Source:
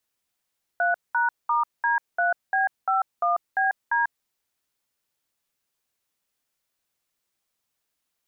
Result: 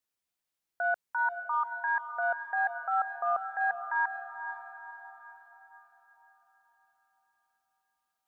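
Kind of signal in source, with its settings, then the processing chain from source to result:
DTMF "3#*D3B51BD", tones 0.143 s, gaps 0.203 s, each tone -22 dBFS
gate -21 dBFS, range -8 dB; diffused feedback echo 0.491 s, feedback 48%, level -9.5 dB

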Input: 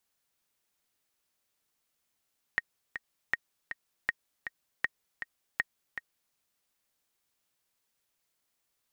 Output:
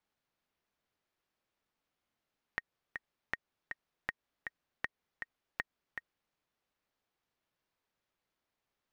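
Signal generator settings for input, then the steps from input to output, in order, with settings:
metronome 159 bpm, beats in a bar 2, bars 5, 1870 Hz, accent 9.5 dB -13.5 dBFS
median filter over 5 samples; high shelf 2300 Hz -7 dB; compressor, threshold -33 dBFS

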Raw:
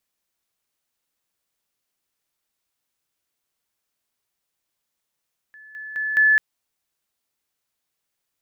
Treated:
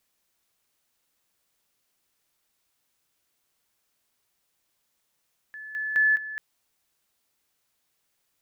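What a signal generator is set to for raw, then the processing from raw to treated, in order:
level ladder 1730 Hz -42.5 dBFS, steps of 10 dB, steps 4, 0.21 s 0.00 s
negative-ratio compressor -24 dBFS, ratio -0.5

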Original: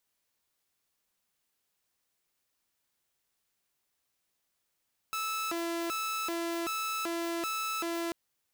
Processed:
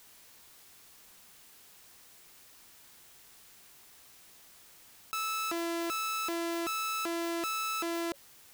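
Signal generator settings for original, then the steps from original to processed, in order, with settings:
siren hi-lo 337–1310 Hz 1.3/s saw -29 dBFS 2.99 s
notch 560 Hz, Q 15; fast leveller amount 50%

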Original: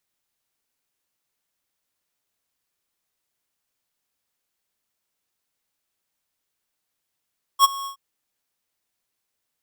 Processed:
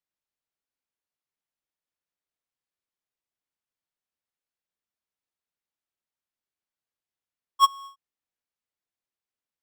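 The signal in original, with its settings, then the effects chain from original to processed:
ADSR square 1100 Hz, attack 53 ms, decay 22 ms, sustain -20 dB, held 0.27 s, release 0.101 s -11 dBFS
LPF 3700 Hz 6 dB/oct; upward expander 1.5:1, over -36 dBFS

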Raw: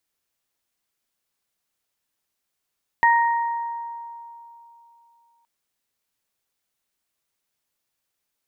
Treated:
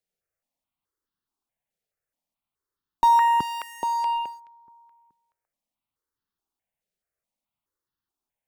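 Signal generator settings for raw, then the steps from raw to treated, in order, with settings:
additive tone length 2.42 s, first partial 934 Hz, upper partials -2.5 dB, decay 3.00 s, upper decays 1.31 s, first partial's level -13.5 dB
in parallel at -6 dB: fuzz box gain 43 dB, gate -41 dBFS; on the sum: high shelf 2000 Hz -11.5 dB; step phaser 4.7 Hz 290–2300 Hz

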